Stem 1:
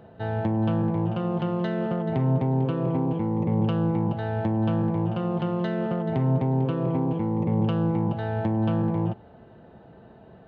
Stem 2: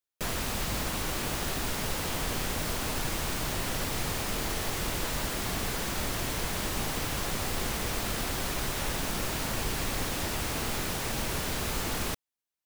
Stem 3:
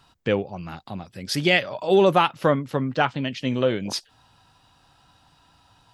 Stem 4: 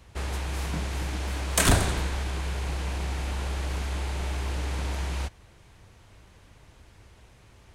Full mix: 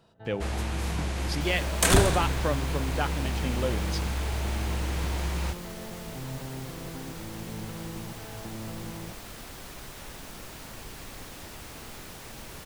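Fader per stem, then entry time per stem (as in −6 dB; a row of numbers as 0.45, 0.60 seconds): −15.5, −11.0, −9.0, 0.0 decibels; 0.00, 1.20, 0.00, 0.25 seconds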